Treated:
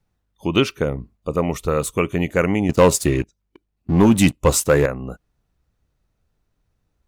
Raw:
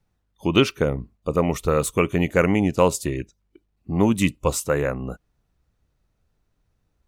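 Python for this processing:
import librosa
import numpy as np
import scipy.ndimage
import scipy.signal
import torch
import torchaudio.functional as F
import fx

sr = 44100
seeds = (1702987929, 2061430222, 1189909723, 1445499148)

y = fx.leveller(x, sr, passes=2, at=(2.69, 4.86))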